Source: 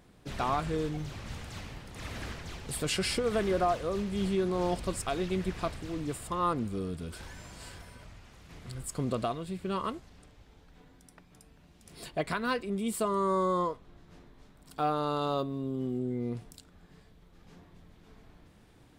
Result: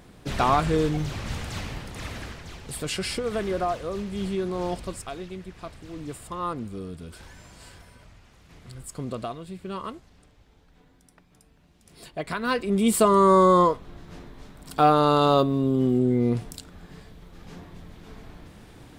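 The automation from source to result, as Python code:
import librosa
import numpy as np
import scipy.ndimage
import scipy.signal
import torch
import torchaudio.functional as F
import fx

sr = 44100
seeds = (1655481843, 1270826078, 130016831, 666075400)

y = fx.gain(x, sr, db=fx.line((1.84, 9.0), (2.3, 1.0), (4.73, 1.0), (5.49, -8.0), (6.04, -1.0), (12.16, -1.0), (12.84, 11.5)))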